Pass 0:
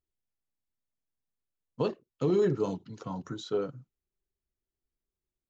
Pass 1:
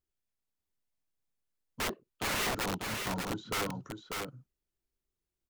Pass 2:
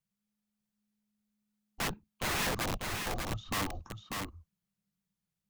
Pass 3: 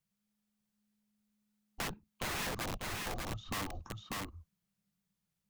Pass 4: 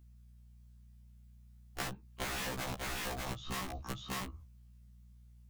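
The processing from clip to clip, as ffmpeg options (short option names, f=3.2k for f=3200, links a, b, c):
-filter_complex "[0:a]acrossover=split=2800[a][b];[a]aeval=exprs='(mod(23.7*val(0)+1,2)-1)/23.7':c=same[c];[b]acompressor=threshold=-58dB:ratio=6[d];[c][d]amix=inputs=2:normalize=0,aecho=1:1:593:0.596"
-af "afreqshift=-210"
-af "acompressor=threshold=-42dB:ratio=2,volume=2dB"
-af "acompressor=threshold=-41dB:ratio=6,aeval=exprs='val(0)+0.000501*(sin(2*PI*60*n/s)+sin(2*PI*2*60*n/s)/2+sin(2*PI*3*60*n/s)/3+sin(2*PI*4*60*n/s)/4+sin(2*PI*5*60*n/s)/5)':c=same,afftfilt=real='re*1.73*eq(mod(b,3),0)':imag='im*1.73*eq(mod(b,3),0)':win_size=2048:overlap=0.75,volume=8.5dB"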